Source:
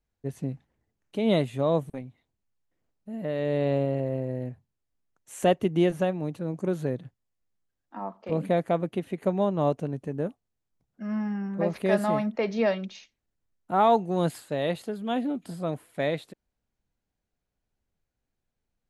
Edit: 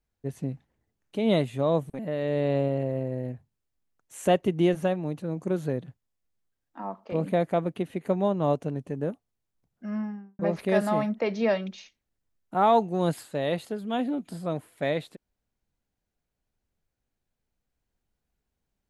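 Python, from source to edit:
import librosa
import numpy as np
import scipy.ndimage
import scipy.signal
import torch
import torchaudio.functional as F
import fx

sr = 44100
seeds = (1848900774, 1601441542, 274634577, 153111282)

y = fx.studio_fade_out(x, sr, start_s=11.03, length_s=0.53)
y = fx.edit(y, sr, fx.cut(start_s=1.99, length_s=1.17), tone=tone)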